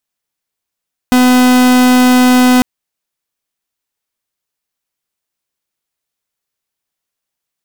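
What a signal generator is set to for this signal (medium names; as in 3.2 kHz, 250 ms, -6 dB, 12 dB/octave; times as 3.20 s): pulse 251 Hz, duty 44% -7.5 dBFS 1.50 s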